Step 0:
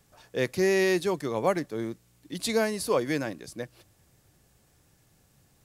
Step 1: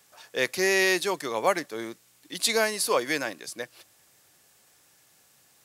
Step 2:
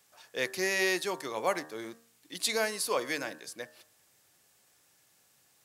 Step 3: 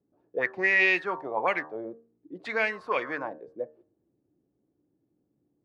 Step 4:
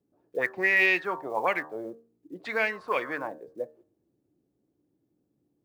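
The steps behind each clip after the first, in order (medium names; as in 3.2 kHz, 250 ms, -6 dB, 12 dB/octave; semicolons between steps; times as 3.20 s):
high-pass 1.1 kHz 6 dB/octave; trim +7.5 dB
de-hum 76.99 Hz, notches 24; trim -5.5 dB
touch-sensitive low-pass 300–2500 Hz up, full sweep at -25 dBFS
block-companded coder 7-bit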